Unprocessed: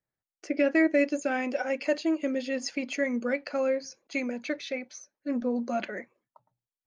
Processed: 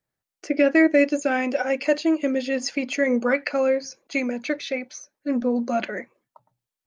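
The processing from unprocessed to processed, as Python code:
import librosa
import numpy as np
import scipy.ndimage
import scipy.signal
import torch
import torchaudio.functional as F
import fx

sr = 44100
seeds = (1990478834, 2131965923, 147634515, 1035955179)

y = fx.peak_eq(x, sr, hz=fx.line((3.06, 390.0), (3.49, 2300.0)), db=14.5, octaves=0.53, at=(3.06, 3.49), fade=0.02)
y = y * librosa.db_to_amplitude(6.0)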